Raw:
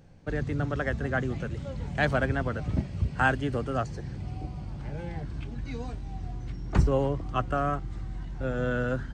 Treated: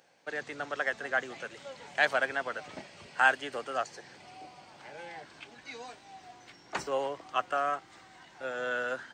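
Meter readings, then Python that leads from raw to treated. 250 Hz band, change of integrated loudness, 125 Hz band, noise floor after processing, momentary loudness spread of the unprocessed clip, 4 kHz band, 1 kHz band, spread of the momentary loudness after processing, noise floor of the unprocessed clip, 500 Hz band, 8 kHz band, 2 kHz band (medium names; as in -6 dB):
-15.5 dB, -1.5 dB, -28.0 dB, -57 dBFS, 12 LU, +3.5 dB, 0.0 dB, 22 LU, -39 dBFS, -4.0 dB, +3.5 dB, +2.0 dB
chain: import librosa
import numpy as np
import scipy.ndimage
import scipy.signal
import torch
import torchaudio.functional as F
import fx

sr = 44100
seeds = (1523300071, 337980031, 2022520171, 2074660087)

y = scipy.signal.sosfilt(scipy.signal.butter(2, 770.0, 'highpass', fs=sr, output='sos'), x)
y = fx.peak_eq(y, sr, hz=1200.0, db=-3.5, octaves=0.6)
y = F.gain(torch.from_numpy(y), 3.5).numpy()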